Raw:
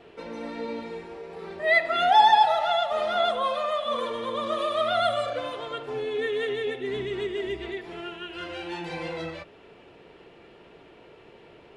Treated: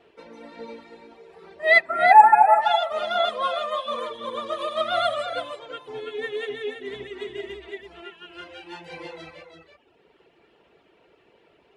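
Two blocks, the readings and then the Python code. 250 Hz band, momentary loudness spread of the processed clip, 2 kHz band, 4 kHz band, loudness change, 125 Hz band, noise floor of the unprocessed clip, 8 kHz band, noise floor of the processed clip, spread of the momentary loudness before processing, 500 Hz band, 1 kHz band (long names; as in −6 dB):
−6.0 dB, 24 LU, +4.5 dB, −1.0 dB, +5.5 dB, −8.0 dB, −52 dBFS, can't be measured, −61 dBFS, 17 LU, 0.0 dB, +4.5 dB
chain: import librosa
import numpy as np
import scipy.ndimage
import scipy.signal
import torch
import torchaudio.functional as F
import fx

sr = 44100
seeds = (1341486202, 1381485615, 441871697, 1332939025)

y = fx.dereverb_blind(x, sr, rt60_s=1.3)
y = fx.low_shelf(y, sr, hz=150.0, db=-10.0)
y = fx.spec_erase(y, sr, start_s=1.82, length_s=0.8, low_hz=2600.0, high_hz=7400.0)
y = fx.peak_eq(y, sr, hz=63.0, db=7.0, octaves=0.68)
y = y + 10.0 ** (-5.5 / 20.0) * np.pad(y, (int(332 * sr / 1000.0), 0))[:len(y)]
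y = fx.upward_expand(y, sr, threshold_db=-40.0, expansion=1.5)
y = y * librosa.db_to_amplitude(8.0)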